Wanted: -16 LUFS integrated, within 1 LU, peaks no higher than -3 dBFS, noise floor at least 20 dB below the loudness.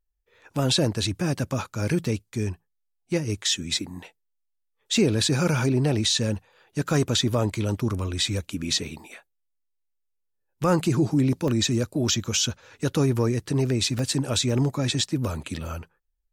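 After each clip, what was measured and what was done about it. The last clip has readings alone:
dropouts 3; longest dropout 1.1 ms; loudness -25.0 LUFS; peak level -10.0 dBFS; loudness target -16.0 LUFS
-> interpolate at 1.39/11.48/13.99 s, 1.1 ms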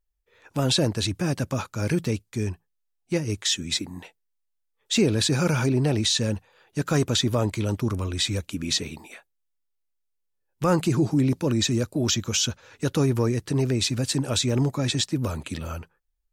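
dropouts 0; loudness -25.0 LUFS; peak level -10.0 dBFS; loudness target -16.0 LUFS
-> trim +9 dB; peak limiter -3 dBFS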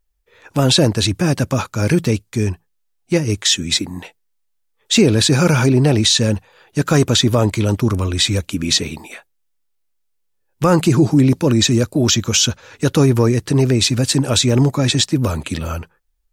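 loudness -16.0 LUFS; peak level -3.0 dBFS; noise floor -67 dBFS

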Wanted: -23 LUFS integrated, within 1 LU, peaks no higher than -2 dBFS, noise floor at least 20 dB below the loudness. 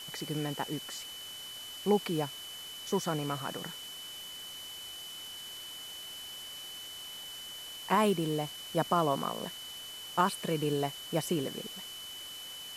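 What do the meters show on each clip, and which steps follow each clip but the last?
steady tone 3 kHz; tone level -43 dBFS; noise floor -45 dBFS; noise floor target -55 dBFS; loudness -35.0 LUFS; peak level -13.5 dBFS; loudness target -23.0 LUFS
-> band-stop 3 kHz, Q 30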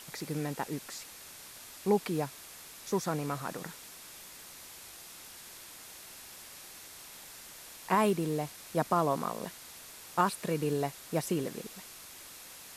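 steady tone not found; noise floor -50 dBFS; noise floor target -53 dBFS
-> noise print and reduce 6 dB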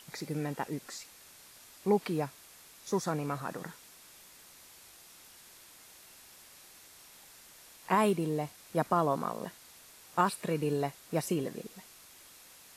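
noise floor -56 dBFS; loudness -33.0 LUFS; peak level -14.0 dBFS; loudness target -23.0 LUFS
-> trim +10 dB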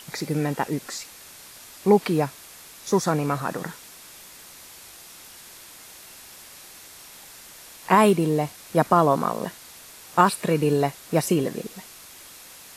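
loudness -23.0 LUFS; peak level -4.0 dBFS; noise floor -46 dBFS

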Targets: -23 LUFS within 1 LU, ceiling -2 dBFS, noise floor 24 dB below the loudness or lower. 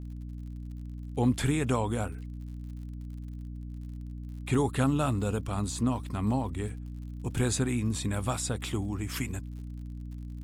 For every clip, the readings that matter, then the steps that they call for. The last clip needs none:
tick rate 60 per s; hum 60 Hz; highest harmonic 300 Hz; hum level -37 dBFS; loudness -32.0 LUFS; peak level -15.5 dBFS; loudness target -23.0 LUFS
-> de-click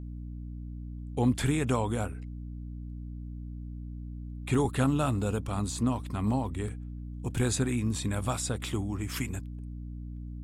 tick rate 0.67 per s; hum 60 Hz; highest harmonic 300 Hz; hum level -37 dBFS
-> de-hum 60 Hz, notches 5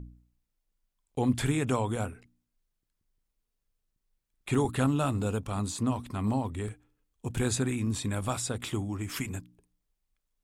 hum not found; loudness -31.0 LUFS; peak level -14.5 dBFS; loudness target -23.0 LUFS
-> trim +8 dB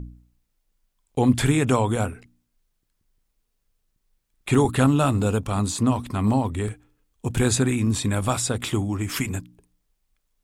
loudness -23.0 LUFS; peak level -6.5 dBFS; noise floor -74 dBFS

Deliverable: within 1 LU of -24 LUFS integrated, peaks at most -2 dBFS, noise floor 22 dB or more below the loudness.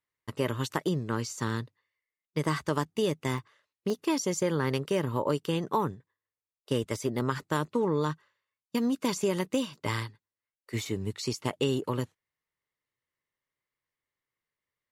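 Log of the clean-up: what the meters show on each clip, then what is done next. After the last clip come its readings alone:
dropouts 2; longest dropout 2.2 ms; loudness -31.0 LUFS; peak level -12.5 dBFS; loudness target -24.0 LUFS
-> interpolate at 3.38/3.90 s, 2.2 ms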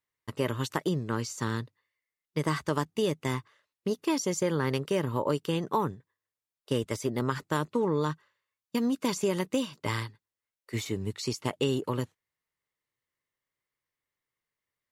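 dropouts 0; loudness -31.0 LUFS; peak level -12.5 dBFS; loudness target -24.0 LUFS
-> trim +7 dB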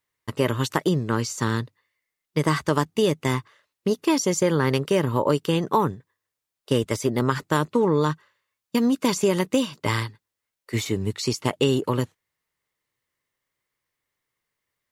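loudness -24.0 LUFS; peak level -5.5 dBFS; noise floor -85 dBFS

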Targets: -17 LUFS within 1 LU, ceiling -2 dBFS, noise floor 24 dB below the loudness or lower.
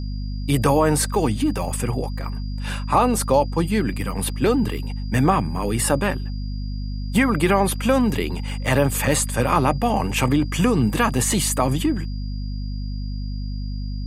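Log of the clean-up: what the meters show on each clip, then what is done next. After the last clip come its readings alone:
hum 50 Hz; highest harmonic 250 Hz; hum level -25 dBFS; steady tone 4.8 kHz; tone level -45 dBFS; loudness -22.0 LUFS; peak level -4.5 dBFS; loudness target -17.0 LUFS
-> de-hum 50 Hz, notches 5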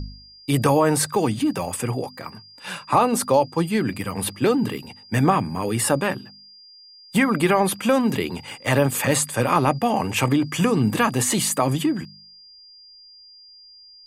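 hum not found; steady tone 4.8 kHz; tone level -45 dBFS
-> band-stop 4.8 kHz, Q 30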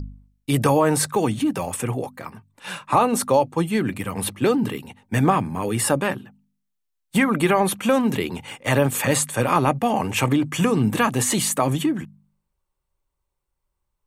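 steady tone not found; loudness -21.5 LUFS; peak level -5.0 dBFS; loudness target -17.0 LUFS
-> trim +4.5 dB; peak limiter -2 dBFS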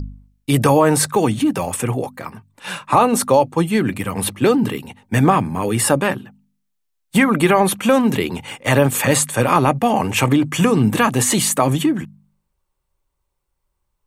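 loudness -17.0 LUFS; peak level -2.0 dBFS; noise floor -73 dBFS

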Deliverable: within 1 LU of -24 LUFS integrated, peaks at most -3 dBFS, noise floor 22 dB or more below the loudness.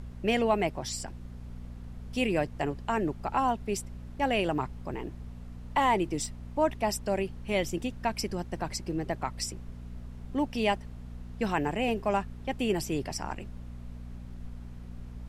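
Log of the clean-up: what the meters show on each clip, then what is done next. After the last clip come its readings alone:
hum 60 Hz; highest harmonic 240 Hz; hum level -41 dBFS; noise floor -43 dBFS; noise floor target -53 dBFS; loudness -31.0 LUFS; peak level -13.0 dBFS; loudness target -24.0 LUFS
-> de-hum 60 Hz, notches 4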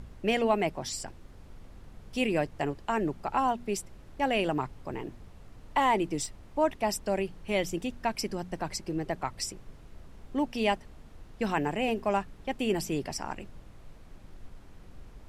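hum not found; noise floor -51 dBFS; noise floor target -53 dBFS
-> noise print and reduce 6 dB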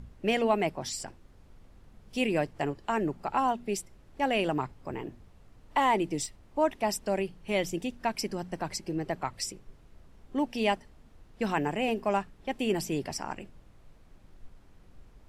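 noise floor -57 dBFS; loudness -31.0 LUFS; peak level -13.0 dBFS; loudness target -24.0 LUFS
-> trim +7 dB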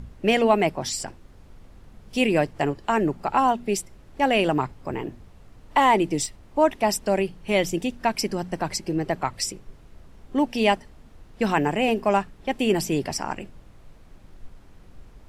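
loudness -24.0 LUFS; peak level -6.0 dBFS; noise floor -50 dBFS

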